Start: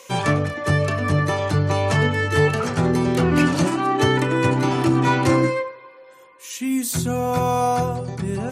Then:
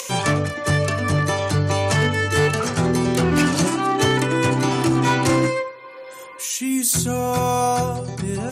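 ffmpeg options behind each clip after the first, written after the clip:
-af "volume=12dB,asoftclip=hard,volume=-12dB,acompressor=mode=upward:threshold=-28dB:ratio=2.5,equalizer=f=8.7k:t=o:w=2.1:g=8"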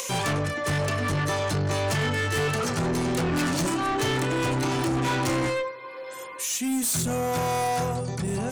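-af "asoftclip=type=tanh:threshold=-22.5dB"

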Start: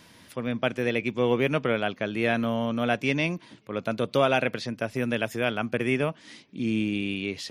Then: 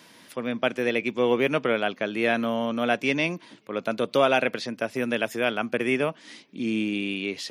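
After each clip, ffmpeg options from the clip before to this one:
-af "highpass=210,volume=2dB"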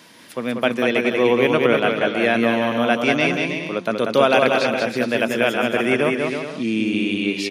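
-af "aecho=1:1:190|323|416.1|481.3|526.9:0.631|0.398|0.251|0.158|0.1,volume=4.5dB"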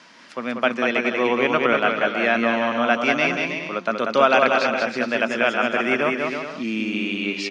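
-af "highpass=220,equalizer=f=320:t=q:w=4:g=-5,equalizer=f=460:t=q:w=4:g=-6,equalizer=f=1.3k:t=q:w=4:g=5,equalizer=f=3.6k:t=q:w=4:g=-5,lowpass=f=6.5k:w=0.5412,lowpass=f=6.5k:w=1.3066"

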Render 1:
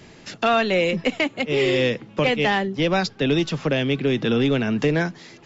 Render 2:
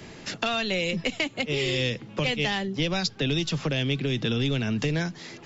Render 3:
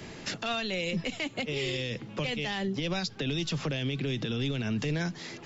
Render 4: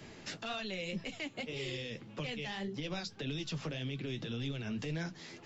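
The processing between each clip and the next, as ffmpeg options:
-filter_complex "[0:a]acrossover=split=140|3000[a][b][c];[b]acompressor=threshold=-31dB:ratio=6[d];[a][d][c]amix=inputs=3:normalize=0,volume=2.5dB"
-af "alimiter=limit=-22.5dB:level=0:latency=1:release=69"
-af "flanger=delay=5.8:depth=8.1:regen=-41:speed=1.8:shape=triangular,volume=-4dB"

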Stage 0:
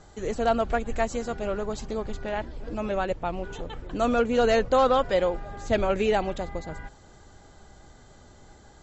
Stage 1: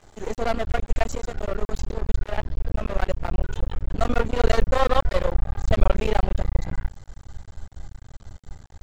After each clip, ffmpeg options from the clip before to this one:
-af "asubboost=boost=7.5:cutoff=100,aeval=exprs='max(val(0),0)':c=same,volume=3.5dB"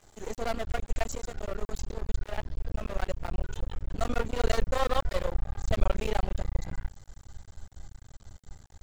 -af "crystalizer=i=1.5:c=0,volume=-7.5dB"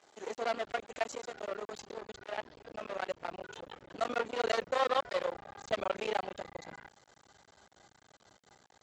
-af "highpass=370,lowpass=5.2k"

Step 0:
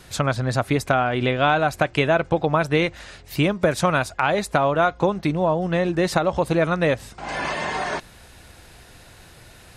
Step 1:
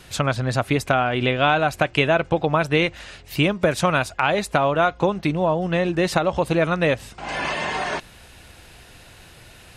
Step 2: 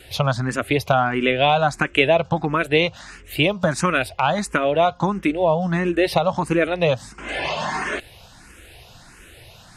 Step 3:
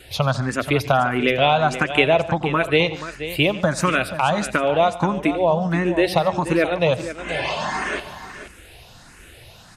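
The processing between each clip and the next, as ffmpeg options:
-af "equalizer=f=2.8k:t=o:w=0.54:g=5"
-filter_complex "[0:a]asplit=2[a][b];[b]afreqshift=1.5[c];[a][c]amix=inputs=2:normalize=1,volume=3.5dB"
-af "aecho=1:1:88|145|480:0.126|0.112|0.251"

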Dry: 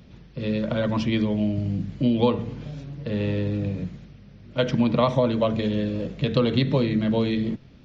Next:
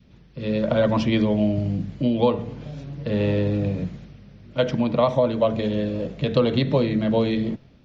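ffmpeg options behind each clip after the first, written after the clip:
-af "adynamicequalizer=threshold=0.0158:dfrequency=660:dqfactor=1.3:tfrequency=660:tqfactor=1.3:attack=5:release=100:ratio=0.375:range=3:mode=boostabove:tftype=bell,dynaudnorm=f=130:g=7:m=7dB,volume=-4.5dB"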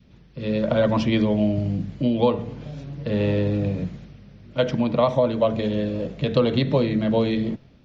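-af anull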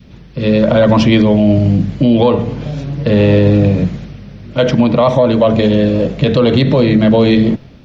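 -filter_complex "[0:a]asplit=2[a][b];[b]asoftclip=type=tanh:threshold=-14dB,volume=-11dB[c];[a][c]amix=inputs=2:normalize=0,alimiter=level_in=12.5dB:limit=-1dB:release=50:level=0:latency=1,volume=-1dB"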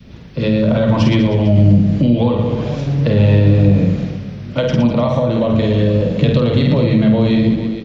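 -filter_complex "[0:a]asplit=2[a][b];[b]aecho=0:1:50|115|199.5|309.4|452.2:0.631|0.398|0.251|0.158|0.1[c];[a][c]amix=inputs=2:normalize=0,acrossover=split=170[d][e];[e]acompressor=threshold=-16dB:ratio=4[f];[d][f]amix=inputs=2:normalize=0"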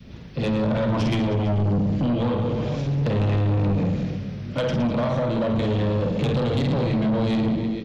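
-af "asoftclip=type=tanh:threshold=-15dB,volume=-3.5dB"

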